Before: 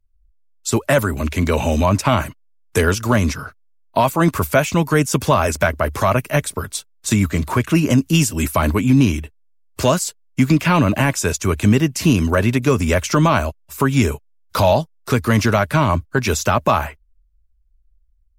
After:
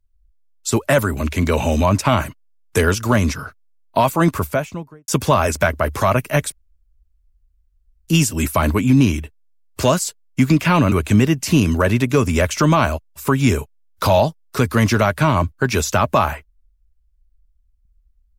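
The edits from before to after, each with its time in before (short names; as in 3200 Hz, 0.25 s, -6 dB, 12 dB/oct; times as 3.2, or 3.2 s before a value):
4.18–5.08 studio fade out
6.52–8.08 room tone
10.92–11.45 cut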